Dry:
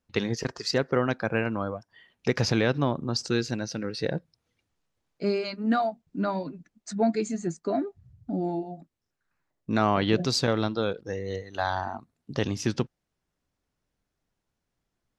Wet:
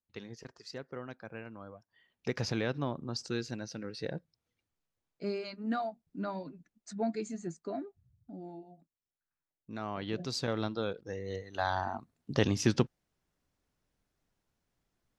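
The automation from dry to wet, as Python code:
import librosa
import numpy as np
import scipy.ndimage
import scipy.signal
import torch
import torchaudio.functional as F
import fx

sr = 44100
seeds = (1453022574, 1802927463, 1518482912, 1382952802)

y = fx.gain(x, sr, db=fx.line((1.59, -18.0), (2.28, -9.0), (7.55, -9.0), (8.37, -16.5), (9.76, -16.5), (10.63, -7.0), (11.13, -7.0), (12.32, 0.0)))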